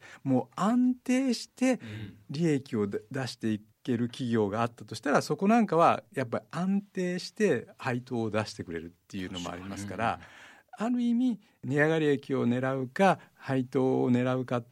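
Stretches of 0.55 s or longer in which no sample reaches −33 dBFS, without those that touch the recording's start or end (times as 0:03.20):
0:10.15–0:10.80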